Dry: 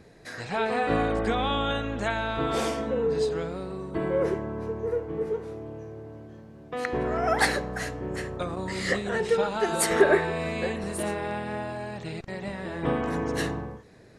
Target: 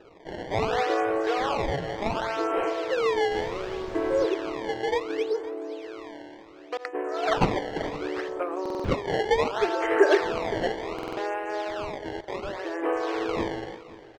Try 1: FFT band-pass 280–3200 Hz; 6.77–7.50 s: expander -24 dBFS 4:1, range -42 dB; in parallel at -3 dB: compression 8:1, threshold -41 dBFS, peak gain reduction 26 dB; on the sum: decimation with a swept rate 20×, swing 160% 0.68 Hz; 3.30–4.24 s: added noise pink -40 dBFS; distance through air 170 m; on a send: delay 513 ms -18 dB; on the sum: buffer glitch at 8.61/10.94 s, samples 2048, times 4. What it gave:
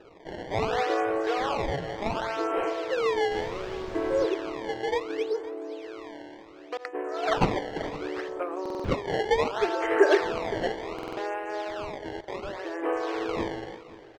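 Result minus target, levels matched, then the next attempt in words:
compression: peak gain reduction +8.5 dB
FFT band-pass 280–3200 Hz; 6.77–7.50 s: expander -24 dBFS 4:1, range -42 dB; in parallel at -3 dB: compression 8:1, threshold -31 dBFS, peak gain reduction 17.5 dB; on the sum: decimation with a swept rate 20×, swing 160% 0.68 Hz; 3.30–4.24 s: added noise pink -40 dBFS; distance through air 170 m; on a send: delay 513 ms -18 dB; on the sum: buffer glitch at 8.61/10.94 s, samples 2048, times 4

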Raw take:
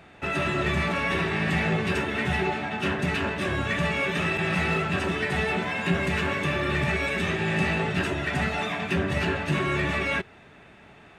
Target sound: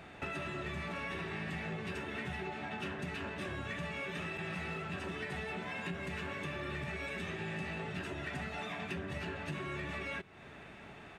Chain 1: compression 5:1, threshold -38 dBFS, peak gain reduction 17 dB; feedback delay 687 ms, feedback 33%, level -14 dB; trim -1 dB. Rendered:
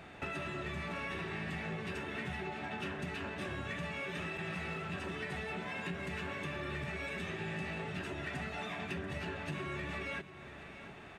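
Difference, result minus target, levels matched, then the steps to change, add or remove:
echo-to-direct +10.5 dB
change: feedback delay 687 ms, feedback 33%, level -24.5 dB

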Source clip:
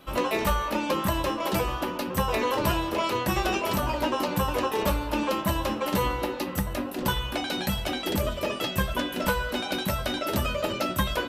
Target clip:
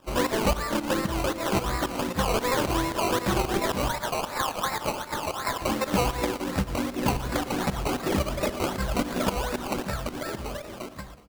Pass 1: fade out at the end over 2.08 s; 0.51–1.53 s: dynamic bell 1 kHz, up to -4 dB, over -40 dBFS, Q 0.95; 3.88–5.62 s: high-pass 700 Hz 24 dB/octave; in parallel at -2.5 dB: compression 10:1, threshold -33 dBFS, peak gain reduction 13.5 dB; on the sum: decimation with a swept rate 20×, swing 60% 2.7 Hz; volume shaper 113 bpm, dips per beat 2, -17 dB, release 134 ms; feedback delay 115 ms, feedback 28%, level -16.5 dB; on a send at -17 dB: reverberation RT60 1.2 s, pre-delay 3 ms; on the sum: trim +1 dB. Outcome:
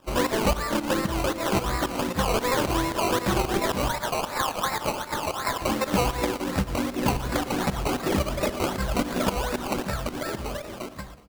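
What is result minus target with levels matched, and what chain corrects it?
compression: peak gain reduction -8 dB
fade out at the end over 2.08 s; 0.51–1.53 s: dynamic bell 1 kHz, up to -4 dB, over -40 dBFS, Q 0.95; 3.88–5.62 s: high-pass 700 Hz 24 dB/octave; in parallel at -2.5 dB: compression 10:1, threshold -42 dBFS, peak gain reduction 21.5 dB; on the sum: decimation with a swept rate 20×, swing 60% 2.7 Hz; volume shaper 113 bpm, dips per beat 2, -17 dB, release 134 ms; feedback delay 115 ms, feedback 28%, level -16.5 dB; on a send at -17 dB: reverberation RT60 1.2 s, pre-delay 3 ms; on the sum: trim +1 dB

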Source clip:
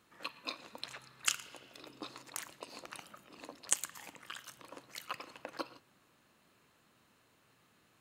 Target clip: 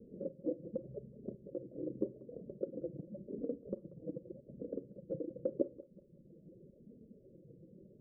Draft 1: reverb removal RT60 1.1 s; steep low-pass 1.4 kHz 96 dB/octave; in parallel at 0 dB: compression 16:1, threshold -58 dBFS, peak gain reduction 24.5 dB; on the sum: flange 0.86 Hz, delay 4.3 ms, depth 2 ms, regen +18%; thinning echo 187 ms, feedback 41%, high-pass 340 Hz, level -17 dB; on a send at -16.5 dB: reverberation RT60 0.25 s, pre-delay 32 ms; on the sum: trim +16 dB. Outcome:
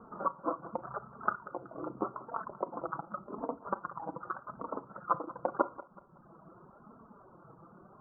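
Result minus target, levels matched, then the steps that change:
500 Hz band -4.0 dB
change: steep low-pass 560 Hz 96 dB/octave

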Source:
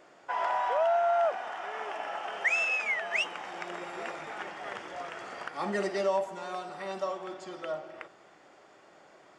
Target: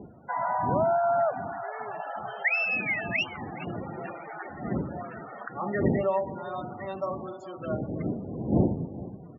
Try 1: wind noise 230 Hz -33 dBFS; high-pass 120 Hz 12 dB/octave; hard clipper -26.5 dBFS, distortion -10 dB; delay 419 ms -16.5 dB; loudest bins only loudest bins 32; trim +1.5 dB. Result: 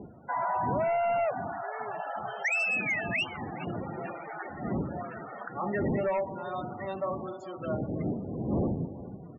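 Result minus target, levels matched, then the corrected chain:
hard clipper: distortion +25 dB
wind noise 230 Hz -33 dBFS; high-pass 120 Hz 12 dB/octave; hard clipper -14.5 dBFS, distortion -34 dB; delay 419 ms -16.5 dB; loudest bins only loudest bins 32; trim +1.5 dB

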